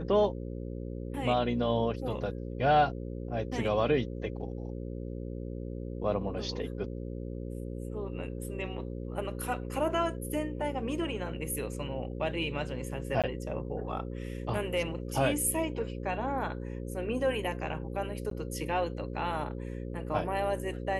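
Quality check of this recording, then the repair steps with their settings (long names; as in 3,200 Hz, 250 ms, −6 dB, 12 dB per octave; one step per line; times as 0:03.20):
mains buzz 60 Hz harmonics 9 −38 dBFS
0:13.22–0:13.24: drop-out 17 ms
0:18.30–0:18.31: drop-out 13 ms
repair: hum removal 60 Hz, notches 9
repair the gap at 0:13.22, 17 ms
repair the gap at 0:18.30, 13 ms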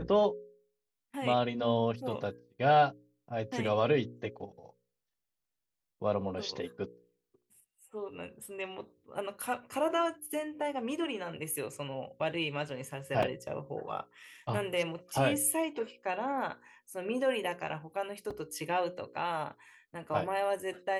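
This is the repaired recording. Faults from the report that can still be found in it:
none of them is left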